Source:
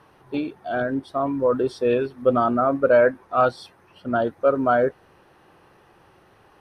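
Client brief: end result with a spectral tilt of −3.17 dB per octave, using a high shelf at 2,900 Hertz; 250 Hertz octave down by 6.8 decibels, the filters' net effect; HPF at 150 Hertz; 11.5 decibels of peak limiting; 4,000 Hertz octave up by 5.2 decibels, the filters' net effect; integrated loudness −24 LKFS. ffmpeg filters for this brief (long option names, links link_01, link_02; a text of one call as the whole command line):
ffmpeg -i in.wav -af "highpass=150,equalizer=frequency=250:width_type=o:gain=-7.5,highshelf=frequency=2900:gain=4.5,equalizer=frequency=4000:width_type=o:gain=3,volume=5.5dB,alimiter=limit=-13dB:level=0:latency=1" out.wav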